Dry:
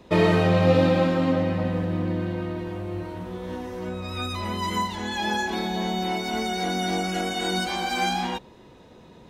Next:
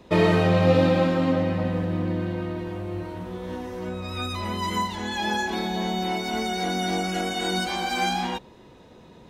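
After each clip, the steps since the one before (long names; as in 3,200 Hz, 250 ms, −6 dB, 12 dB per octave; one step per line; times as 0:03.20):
no processing that can be heard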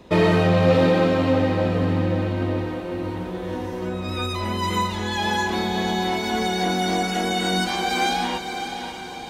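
soft clipping −11.5 dBFS, distortion −21 dB
feedback delay with all-pass diffusion 584 ms, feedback 55%, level −8 dB
level +3 dB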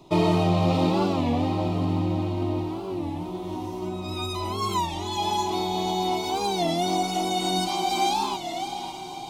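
phaser with its sweep stopped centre 330 Hz, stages 8
wow of a warped record 33 1/3 rpm, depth 160 cents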